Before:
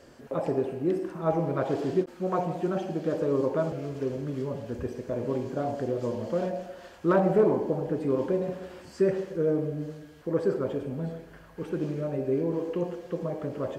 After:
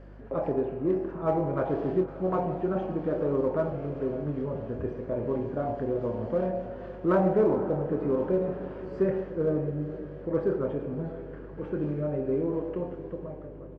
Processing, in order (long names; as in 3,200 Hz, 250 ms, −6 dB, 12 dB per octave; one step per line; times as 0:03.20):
fade-out on the ending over 1.32 s
low-pass filter 1,900 Hz 12 dB per octave
double-tracking delay 27 ms −9 dB
feedback delay with all-pass diffusion 534 ms, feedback 62%, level −15 dB
in parallel at −12 dB: hard clipping −22.5 dBFS, distortion −12 dB
on the sum: mains hum 50 Hz, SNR 19 dB
level −2.5 dB